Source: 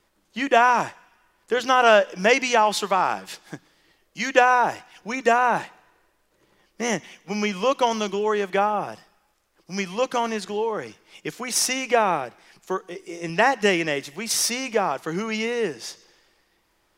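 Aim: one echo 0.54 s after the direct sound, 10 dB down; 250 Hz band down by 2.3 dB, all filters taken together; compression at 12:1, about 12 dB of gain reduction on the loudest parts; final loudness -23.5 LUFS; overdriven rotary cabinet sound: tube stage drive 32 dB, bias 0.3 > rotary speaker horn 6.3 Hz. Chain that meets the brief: bell 250 Hz -3 dB; compressor 12:1, threshold -24 dBFS; echo 0.54 s -10 dB; tube stage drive 32 dB, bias 0.3; rotary speaker horn 6.3 Hz; gain +15.5 dB

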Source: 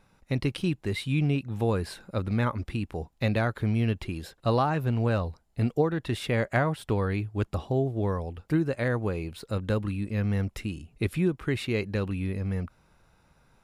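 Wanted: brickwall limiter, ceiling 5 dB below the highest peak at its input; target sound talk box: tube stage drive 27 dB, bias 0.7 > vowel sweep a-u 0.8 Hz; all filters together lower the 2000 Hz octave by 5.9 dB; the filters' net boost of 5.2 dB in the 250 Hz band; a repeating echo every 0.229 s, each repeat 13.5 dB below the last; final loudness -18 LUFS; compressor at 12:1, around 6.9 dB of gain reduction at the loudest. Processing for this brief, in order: bell 250 Hz +7 dB; bell 2000 Hz -8 dB; compressor 12:1, threshold -23 dBFS; limiter -21 dBFS; feedback echo 0.229 s, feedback 21%, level -13.5 dB; tube stage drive 27 dB, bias 0.7; vowel sweep a-u 0.8 Hz; gain +30 dB

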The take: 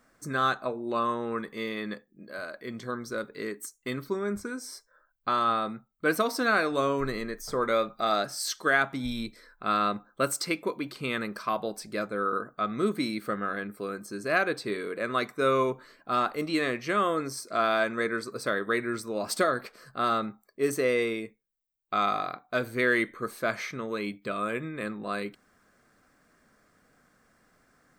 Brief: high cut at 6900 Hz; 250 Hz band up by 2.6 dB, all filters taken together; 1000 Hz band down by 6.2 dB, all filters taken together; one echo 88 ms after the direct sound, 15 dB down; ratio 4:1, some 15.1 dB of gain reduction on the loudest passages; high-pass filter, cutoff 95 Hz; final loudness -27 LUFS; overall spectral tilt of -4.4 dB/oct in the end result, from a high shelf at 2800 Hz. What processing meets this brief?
HPF 95 Hz; LPF 6900 Hz; bell 250 Hz +4 dB; bell 1000 Hz -7.5 dB; high shelf 2800 Hz -7.5 dB; compressor 4:1, threshold -40 dBFS; echo 88 ms -15 dB; gain +15.5 dB

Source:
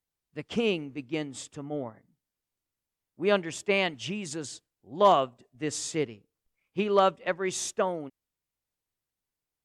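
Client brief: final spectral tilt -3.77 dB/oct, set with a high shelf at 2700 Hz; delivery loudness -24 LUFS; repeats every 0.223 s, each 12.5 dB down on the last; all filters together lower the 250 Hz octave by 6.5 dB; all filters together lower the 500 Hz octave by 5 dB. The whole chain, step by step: bell 250 Hz -8 dB; bell 500 Hz -4 dB; high shelf 2700 Hz -6.5 dB; feedback echo 0.223 s, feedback 24%, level -12.5 dB; gain +8.5 dB

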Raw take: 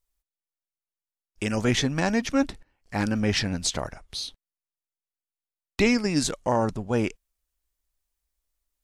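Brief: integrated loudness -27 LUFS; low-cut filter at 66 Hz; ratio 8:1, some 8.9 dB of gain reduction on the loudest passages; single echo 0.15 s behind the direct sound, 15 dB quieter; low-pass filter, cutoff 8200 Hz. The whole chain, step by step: HPF 66 Hz; LPF 8200 Hz; compressor 8:1, threshold -26 dBFS; echo 0.15 s -15 dB; gain +5 dB

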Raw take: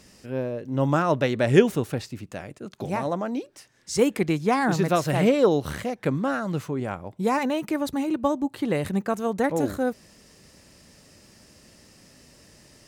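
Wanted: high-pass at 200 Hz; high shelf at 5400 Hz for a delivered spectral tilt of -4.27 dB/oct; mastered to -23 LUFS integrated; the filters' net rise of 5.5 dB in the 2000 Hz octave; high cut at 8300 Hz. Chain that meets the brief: HPF 200 Hz; LPF 8300 Hz; bell 2000 Hz +7.5 dB; high shelf 5400 Hz -4.5 dB; gain +2 dB

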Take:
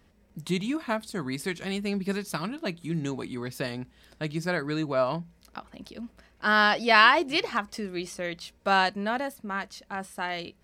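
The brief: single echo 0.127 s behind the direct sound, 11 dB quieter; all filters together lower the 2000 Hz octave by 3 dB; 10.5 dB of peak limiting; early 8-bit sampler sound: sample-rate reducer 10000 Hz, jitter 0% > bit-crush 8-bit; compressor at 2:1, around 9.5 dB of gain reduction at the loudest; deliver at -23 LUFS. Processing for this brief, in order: bell 2000 Hz -4 dB; compressor 2:1, threshold -32 dBFS; limiter -26.5 dBFS; echo 0.127 s -11 dB; sample-rate reducer 10000 Hz, jitter 0%; bit-crush 8-bit; gain +14 dB

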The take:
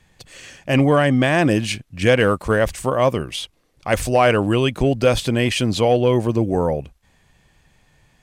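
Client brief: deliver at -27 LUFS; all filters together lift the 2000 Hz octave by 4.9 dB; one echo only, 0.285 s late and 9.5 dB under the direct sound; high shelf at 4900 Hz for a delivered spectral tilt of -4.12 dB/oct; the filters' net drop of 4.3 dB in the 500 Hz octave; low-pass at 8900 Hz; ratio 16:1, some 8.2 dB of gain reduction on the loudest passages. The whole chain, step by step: LPF 8900 Hz; bell 500 Hz -5.5 dB; bell 2000 Hz +7.5 dB; high shelf 4900 Hz -5.5 dB; compressor 16:1, threshold -19 dBFS; echo 0.285 s -9.5 dB; gain -2.5 dB

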